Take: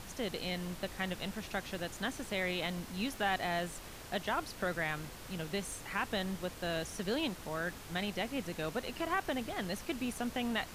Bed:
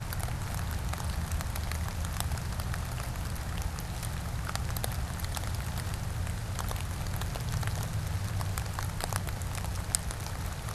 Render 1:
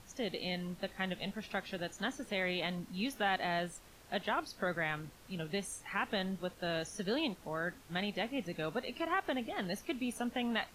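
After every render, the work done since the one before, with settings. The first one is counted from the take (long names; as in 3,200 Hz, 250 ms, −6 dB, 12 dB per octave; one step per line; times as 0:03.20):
noise reduction from a noise print 10 dB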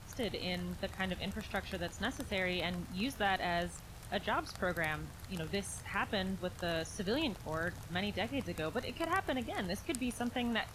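mix in bed −15 dB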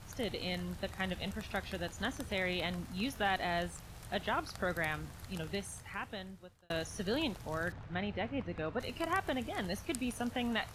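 0:05.33–0:06.70: fade out
0:07.72–0:08.80: low-pass filter 2,400 Hz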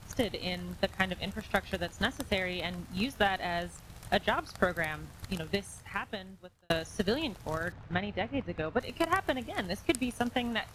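transient designer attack +11 dB, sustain −1 dB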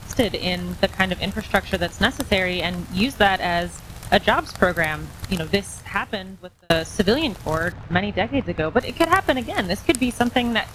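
level +11.5 dB
brickwall limiter −3 dBFS, peak gain reduction 2.5 dB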